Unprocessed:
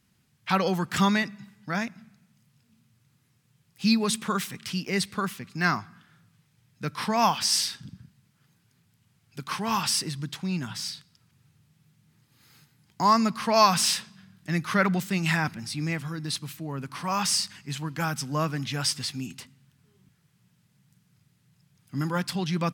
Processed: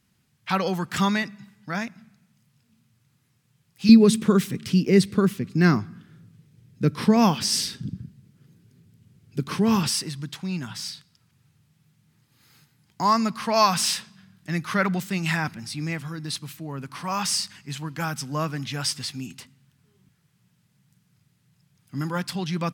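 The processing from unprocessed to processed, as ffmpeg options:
-filter_complex "[0:a]asettb=1/sr,asplit=3[s0][s1][s2];[s0]atrim=end=3.894[s3];[s1]atrim=start=3.89:end=9.89,asetpts=PTS-STARTPTS,afade=t=in:d=0.004:c=qsin,afade=t=out:st=5.996:d=0.004:c=qsin,lowshelf=f=570:t=q:w=1.5:g=10.5[s4];[s2]atrim=start=9.886[s5];[s3][s4]acrossfade=d=0.004:c1=hsin:c2=qsin[s6];[s6][s5]acrossfade=d=0.004:c1=qsin:c2=hsin"

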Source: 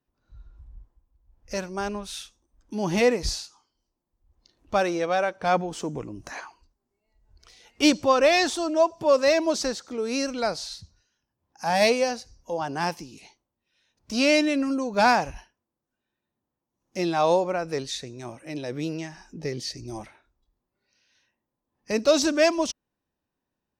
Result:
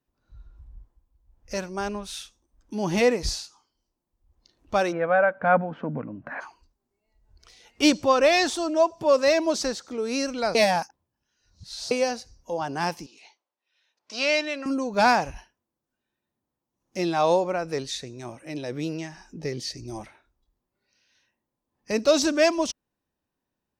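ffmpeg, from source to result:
-filter_complex "[0:a]asplit=3[s0][s1][s2];[s0]afade=t=out:st=4.91:d=0.02[s3];[s1]highpass=110,equalizer=f=150:t=q:w=4:g=5,equalizer=f=240:t=q:w=4:g=9,equalizer=f=370:t=q:w=4:g=-10,equalizer=f=580:t=q:w=4:g=6,equalizer=f=1500:t=q:w=4:g=8,lowpass=f=2200:w=0.5412,lowpass=f=2200:w=1.3066,afade=t=in:st=4.91:d=0.02,afade=t=out:st=6.4:d=0.02[s4];[s2]afade=t=in:st=6.4:d=0.02[s5];[s3][s4][s5]amix=inputs=3:normalize=0,asettb=1/sr,asplit=3[s6][s7][s8];[s6]atrim=end=13.064[s9];[s7]atrim=start=13.06:end=14.66,asetpts=PTS-STARTPTS,afade=t=in:d=0.004:c=qsin,afade=t=out:st=1.596:d=0.004:c=qsin,highpass=600,lowpass=5400[s10];[s8]atrim=start=14.656[s11];[s9][s10]acrossfade=d=0.004:c1=hsin:c2=qsin[s12];[s12][s11]acrossfade=d=0.004:c1=qsin:c2=hsin,asplit=3[s13][s14][s15];[s13]atrim=end=10.552[s16];[s14]atrim=start=10.548:end=11.912,asetpts=PTS-STARTPTS,areverse[s17];[s15]atrim=start=11.908[s18];[s16][s17]acrossfade=d=0.004:c1=hsin:c2=hsin[s19];[s19][s18]acrossfade=d=0.004:c1=hsin:c2=hsin"

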